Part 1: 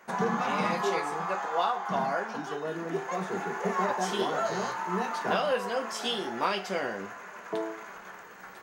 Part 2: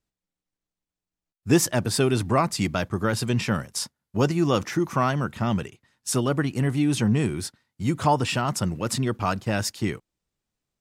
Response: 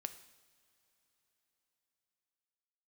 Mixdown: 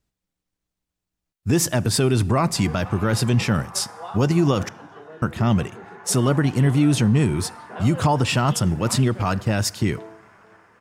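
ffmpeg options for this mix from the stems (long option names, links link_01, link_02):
-filter_complex "[0:a]lowpass=3300,adelay=2450,volume=-8dB,asplit=2[link_01][link_02];[link_02]volume=-16.5dB[link_03];[1:a]equalizer=frequency=72:width=0.48:gain=5.5,volume=2dB,asplit=3[link_04][link_05][link_06];[link_04]atrim=end=4.69,asetpts=PTS-STARTPTS,afade=type=out:start_time=4.686:duration=0.004:curve=hsin[link_07];[link_05]atrim=start=4.69:end=5.22,asetpts=PTS-STARTPTS,volume=0[link_08];[link_06]atrim=start=5.22,asetpts=PTS-STARTPTS,afade=type=in:duration=0.004:curve=hsin[link_09];[link_07][link_08][link_09]concat=n=3:v=0:a=1,asplit=2[link_10][link_11];[link_11]volume=-7dB[link_12];[2:a]atrim=start_sample=2205[link_13];[link_12][link_13]afir=irnorm=-1:irlink=0[link_14];[link_03]aecho=0:1:462:1[link_15];[link_01][link_10][link_14][link_15]amix=inputs=4:normalize=0,alimiter=limit=-10dB:level=0:latency=1:release=65"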